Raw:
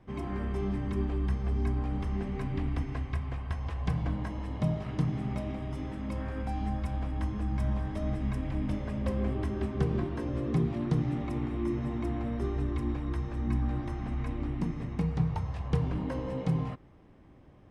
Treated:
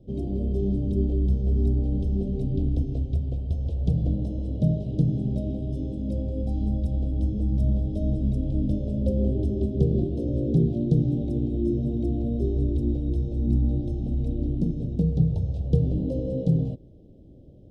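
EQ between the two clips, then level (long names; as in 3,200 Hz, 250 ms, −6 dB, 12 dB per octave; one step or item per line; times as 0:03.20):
Chebyshev band-stop filter 570–3,500 Hz, order 3
high-shelf EQ 2,000 Hz −11.5 dB
+7.5 dB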